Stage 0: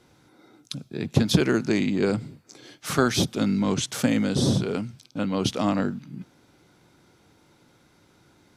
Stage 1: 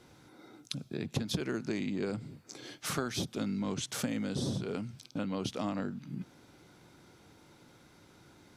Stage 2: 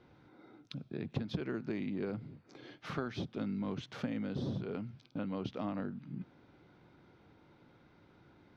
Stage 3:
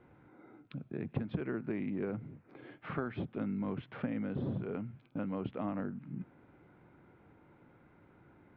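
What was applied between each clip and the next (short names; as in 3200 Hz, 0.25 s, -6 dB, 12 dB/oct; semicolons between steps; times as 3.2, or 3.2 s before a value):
compressor 3:1, threshold -35 dBFS, peak gain reduction 16.5 dB
air absorption 290 m; gain -2.5 dB
LPF 2500 Hz 24 dB/oct; gain +1 dB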